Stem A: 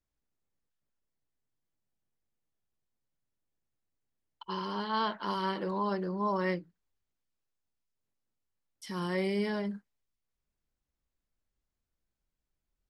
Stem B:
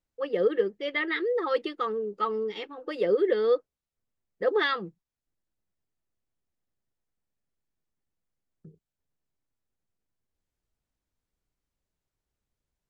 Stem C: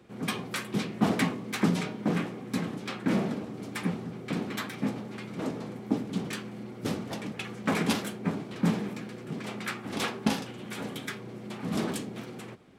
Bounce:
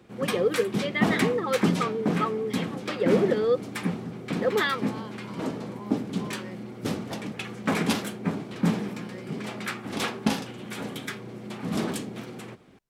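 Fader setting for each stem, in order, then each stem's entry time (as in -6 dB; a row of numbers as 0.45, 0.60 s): -12.5, 0.0, +2.0 dB; 0.00, 0.00, 0.00 s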